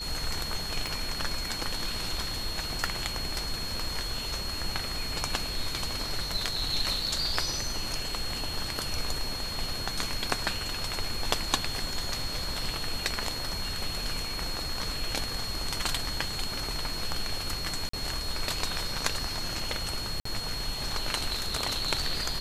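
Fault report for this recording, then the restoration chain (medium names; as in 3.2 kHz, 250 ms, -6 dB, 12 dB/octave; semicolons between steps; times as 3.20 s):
whine 4.3 kHz -35 dBFS
0.87 s: pop
17.89–17.93 s: dropout 44 ms
20.20–20.25 s: dropout 54 ms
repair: de-click; band-stop 4.3 kHz, Q 30; interpolate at 17.89 s, 44 ms; interpolate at 20.20 s, 54 ms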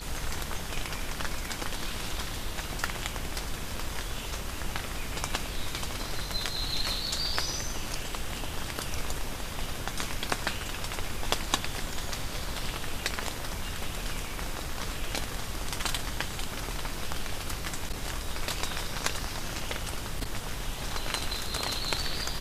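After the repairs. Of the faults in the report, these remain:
0.87 s: pop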